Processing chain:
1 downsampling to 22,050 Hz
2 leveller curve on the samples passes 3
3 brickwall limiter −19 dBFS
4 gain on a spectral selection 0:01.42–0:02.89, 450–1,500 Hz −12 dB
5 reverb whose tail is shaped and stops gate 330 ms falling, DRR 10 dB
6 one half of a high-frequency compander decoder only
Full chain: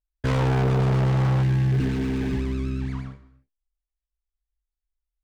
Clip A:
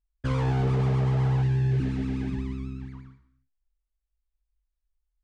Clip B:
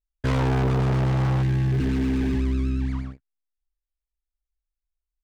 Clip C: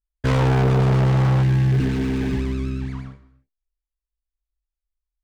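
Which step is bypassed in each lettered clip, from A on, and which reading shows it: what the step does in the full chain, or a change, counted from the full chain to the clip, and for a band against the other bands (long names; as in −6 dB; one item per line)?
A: 2, change in crest factor +1.5 dB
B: 5, change in momentary loudness spread −3 LU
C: 3, average gain reduction 3.0 dB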